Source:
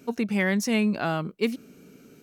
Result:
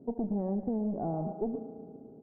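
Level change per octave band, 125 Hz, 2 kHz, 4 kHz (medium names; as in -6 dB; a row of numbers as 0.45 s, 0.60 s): -5.5 dB, under -40 dB, under -40 dB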